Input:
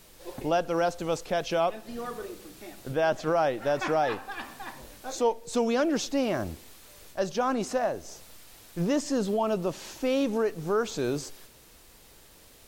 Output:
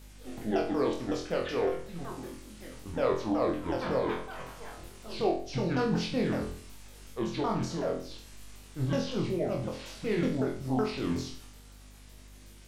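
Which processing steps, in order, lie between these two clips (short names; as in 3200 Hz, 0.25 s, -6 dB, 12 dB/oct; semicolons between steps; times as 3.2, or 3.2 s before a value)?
repeated pitch sweeps -11 st, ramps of 0.186 s; hum 50 Hz, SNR 17 dB; flutter echo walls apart 4 m, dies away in 0.45 s; gain -4.5 dB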